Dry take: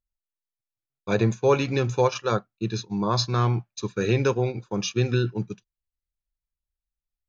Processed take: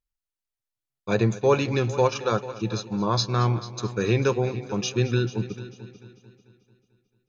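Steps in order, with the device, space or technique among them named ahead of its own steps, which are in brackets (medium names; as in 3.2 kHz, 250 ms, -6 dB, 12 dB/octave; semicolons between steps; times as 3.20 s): multi-head tape echo (multi-head delay 221 ms, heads first and second, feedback 42%, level -17.5 dB; wow and flutter 19 cents)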